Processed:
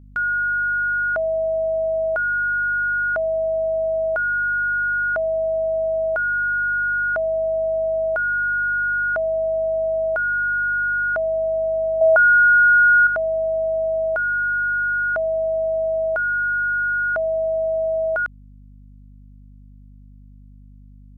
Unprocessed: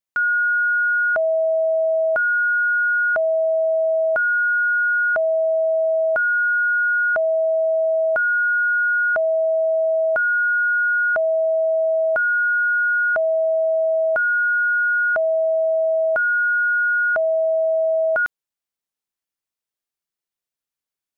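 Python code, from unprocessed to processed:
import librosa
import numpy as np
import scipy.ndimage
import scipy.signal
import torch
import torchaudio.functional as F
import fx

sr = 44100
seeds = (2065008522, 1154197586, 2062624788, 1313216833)

y = fx.band_shelf(x, sr, hz=980.0, db=8.5, octaves=1.7, at=(12.01, 13.07))
y = fx.add_hum(y, sr, base_hz=50, snr_db=24)
y = F.gain(torch.from_numpy(y), -2.5).numpy()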